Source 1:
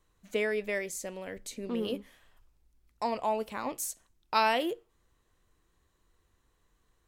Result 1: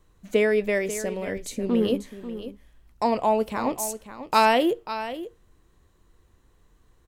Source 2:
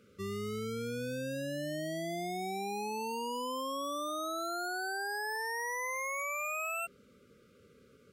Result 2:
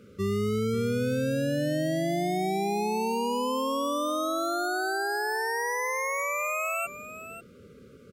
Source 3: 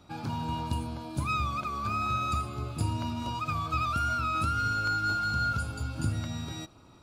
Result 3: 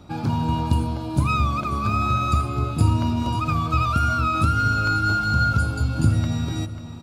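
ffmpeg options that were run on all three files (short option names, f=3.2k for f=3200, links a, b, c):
-af "tiltshelf=f=640:g=3.5,aecho=1:1:541:0.237,volume=8.5dB"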